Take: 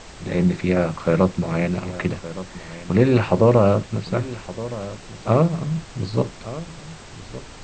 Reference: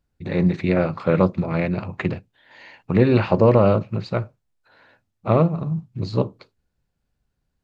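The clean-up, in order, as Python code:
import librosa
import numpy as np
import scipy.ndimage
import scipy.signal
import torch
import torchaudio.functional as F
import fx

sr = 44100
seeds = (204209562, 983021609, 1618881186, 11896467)

y = fx.noise_reduce(x, sr, print_start_s=6.79, print_end_s=7.29, reduce_db=30.0)
y = fx.fix_echo_inverse(y, sr, delay_ms=1167, level_db=-15.0)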